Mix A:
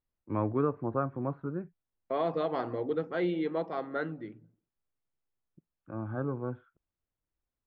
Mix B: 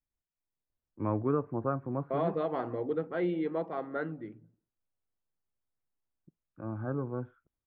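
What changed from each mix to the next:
first voice: entry +0.70 s
master: add high-frequency loss of the air 310 metres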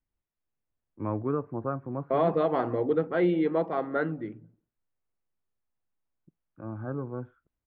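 second voice +6.5 dB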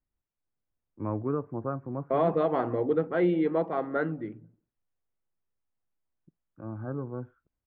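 first voice: add high-frequency loss of the air 380 metres
second voice: add high-frequency loss of the air 130 metres

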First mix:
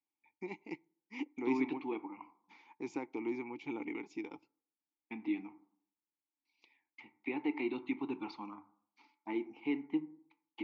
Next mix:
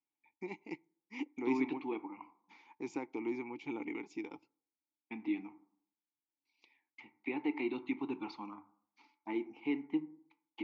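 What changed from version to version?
master: remove low-pass filter 7,800 Hz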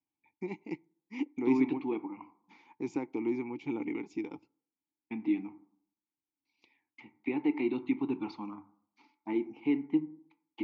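master: add low-shelf EQ 320 Hz +11.5 dB

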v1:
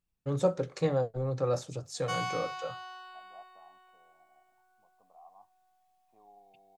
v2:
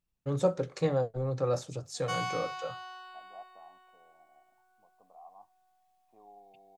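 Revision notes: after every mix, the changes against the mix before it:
second voice: add parametric band 380 Hz +5 dB 2.3 octaves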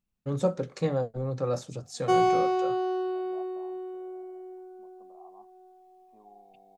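background: remove high-pass filter 1,100 Hz 24 dB per octave
master: add parametric band 220 Hz +9.5 dB 0.4 octaves

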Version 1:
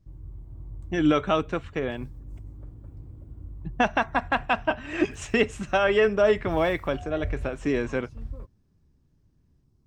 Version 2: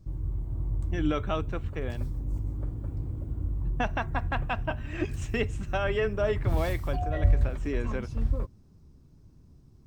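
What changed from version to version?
speech −7.5 dB
background +9.5 dB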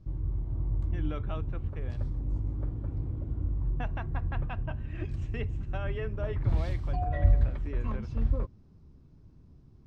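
speech −10.0 dB
master: add low-pass filter 3,900 Hz 12 dB per octave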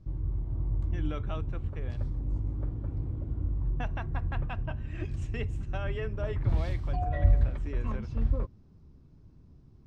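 speech: remove high-frequency loss of the air 120 metres

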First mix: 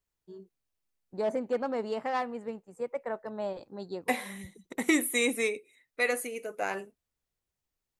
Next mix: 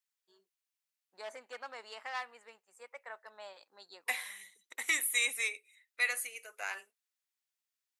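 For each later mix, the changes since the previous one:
master: add high-pass filter 1,500 Hz 12 dB per octave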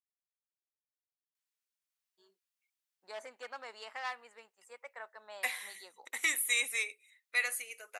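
first voice: entry +1.90 s
second voice: entry +1.35 s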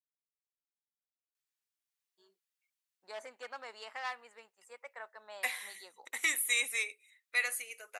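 nothing changed

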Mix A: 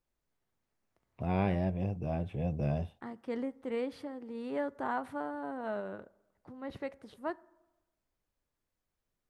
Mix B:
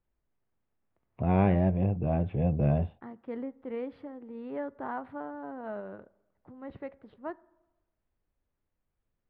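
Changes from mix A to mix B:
first voice +7.0 dB
master: add high-frequency loss of the air 460 metres

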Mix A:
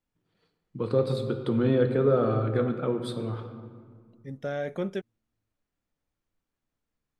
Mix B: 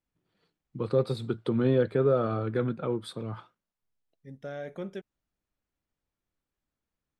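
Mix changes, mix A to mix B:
second voice −6.5 dB
reverb: off

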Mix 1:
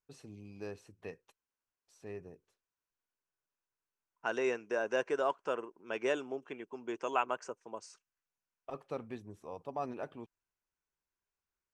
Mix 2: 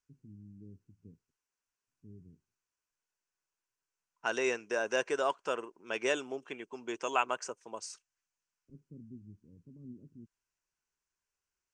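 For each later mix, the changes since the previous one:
first voice: add inverse Chebyshev low-pass filter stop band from 670 Hz, stop band 50 dB
master: add high-shelf EQ 2,600 Hz +11.5 dB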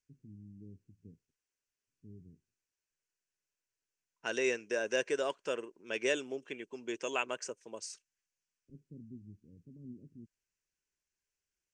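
master: add flat-topped bell 990 Hz −8.5 dB 1.2 octaves

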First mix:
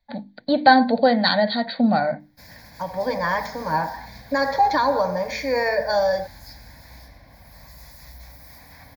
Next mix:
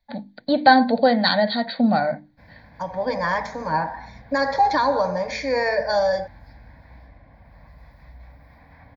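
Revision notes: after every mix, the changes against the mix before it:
background: add high-frequency loss of the air 480 metres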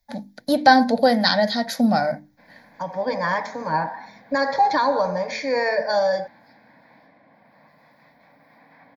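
first voice: remove linear-phase brick-wall low-pass 4,700 Hz
background: add high-pass filter 190 Hz 24 dB per octave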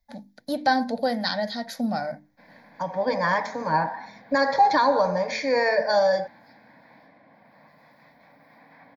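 first voice −8.0 dB

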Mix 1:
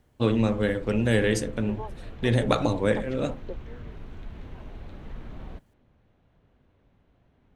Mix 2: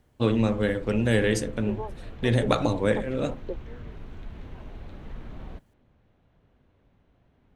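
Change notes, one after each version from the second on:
second voice: add spectral tilt −3.5 dB per octave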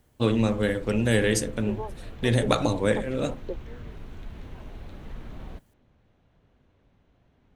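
master: add high-shelf EQ 6,100 Hz +10 dB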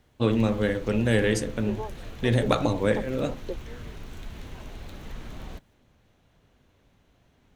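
background: remove head-to-tape spacing loss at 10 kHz 27 dB
master: add high-shelf EQ 6,100 Hz −10 dB

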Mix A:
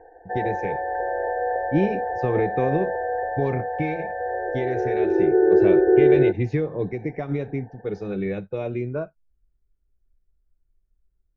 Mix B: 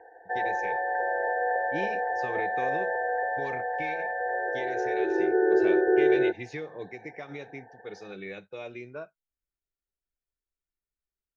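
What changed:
speech −7.0 dB
master: add spectral tilt +4.5 dB per octave

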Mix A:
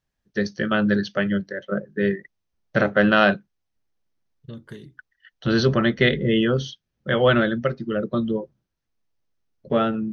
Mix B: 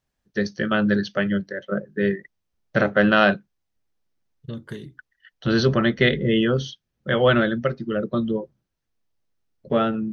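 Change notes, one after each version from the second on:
second voice +4.5 dB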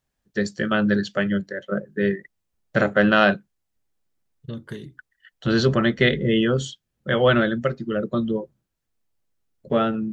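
first voice: remove linear-phase brick-wall low-pass 6,500 Hz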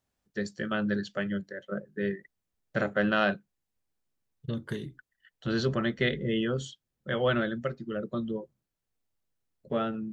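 first voice −9.0 dB

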